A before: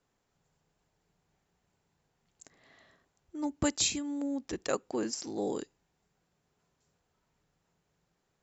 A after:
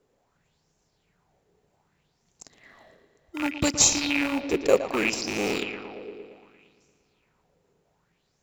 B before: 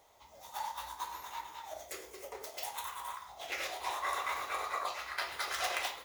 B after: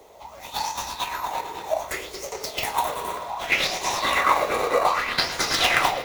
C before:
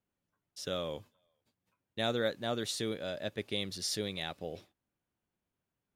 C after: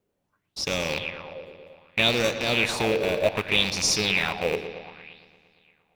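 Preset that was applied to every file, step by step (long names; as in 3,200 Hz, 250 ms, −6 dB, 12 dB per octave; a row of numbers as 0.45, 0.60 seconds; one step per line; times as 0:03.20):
loose part that buzzes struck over −45 dBFS, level −23 dBFS
in parallel at −7 dB: decimation without filtering 26×
on the sum: bucket-brigade delay 115 ms, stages 4,096, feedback 71%, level −11 dB
auto-filter bell 0.65 Hz 410–6,300 Hz +12 dB
loudness normalisation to −24 LKFS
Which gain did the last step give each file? +2.0, +9.5, +4.5 decibels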